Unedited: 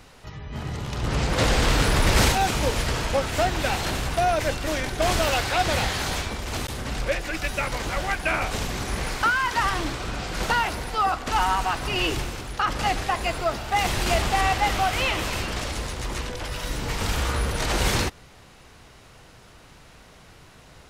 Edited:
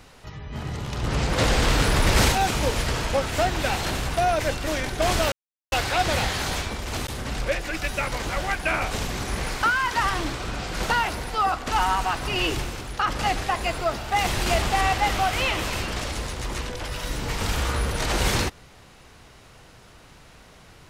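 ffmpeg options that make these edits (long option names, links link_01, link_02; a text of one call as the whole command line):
ffmpeg -i in.wav -filter_complex "[0:a]asplit=2[link_01][link_02];[link_01]atrim=end=5.32,asetpts=PTS-STARTPTS,afade=type=out:start_time=5.316:duration=0.004:curve=hsin,apad=pad_dur=0.4[link_03];[link_02]atrim=start=5.32,asetpts=PTS-STARTPTS,afade=type=in:duration=0.004:curve=hsin[link_04];[link_03][link_04]concat=n=2:v=0:a=1" out.wav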